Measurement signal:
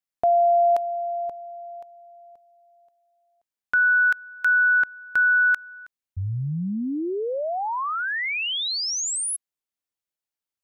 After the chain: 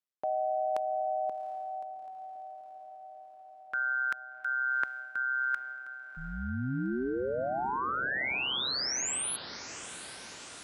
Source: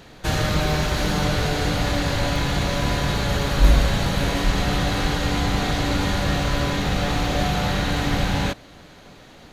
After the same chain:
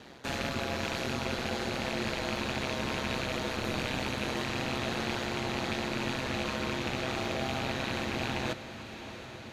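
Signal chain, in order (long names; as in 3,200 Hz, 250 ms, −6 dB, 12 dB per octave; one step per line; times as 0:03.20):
loose part that buzzes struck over −23 dBFS, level −16 dBFS
Chebyshev high-pass filter 200 Hz, order 2
high-shelf EQ 12,000 Hz −8.5 dB
reversed playback
downward compressor, threshold −27 dBFS
reversed playback
ring modulation 65 Hz
feedback delay with all-pass diffusion 756 ms, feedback 66%, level −13 dB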